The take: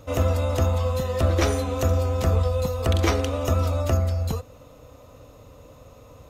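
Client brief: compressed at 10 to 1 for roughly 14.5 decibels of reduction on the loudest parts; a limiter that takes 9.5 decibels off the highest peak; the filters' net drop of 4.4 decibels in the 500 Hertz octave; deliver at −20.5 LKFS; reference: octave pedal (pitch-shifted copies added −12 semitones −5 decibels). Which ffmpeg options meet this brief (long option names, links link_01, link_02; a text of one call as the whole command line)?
ffmpeg -i in.wav -filter_complex "[0:a]equalizer=frequency=500:width_type=o:gain=-5,acompressor=threshold=-32dB:ratio=10,alimiter=level_in=5dB:limit=-24dB:level=0:latency=1,volume=-5dB,asplit=2[link_01][link_02];[link_02]asetrate=22050,aresample=44100,atempo=2,volume=-5dB[link_03];[link_01][link_03]amix=inputs=2:normalize=0,volume=17dB" out.wav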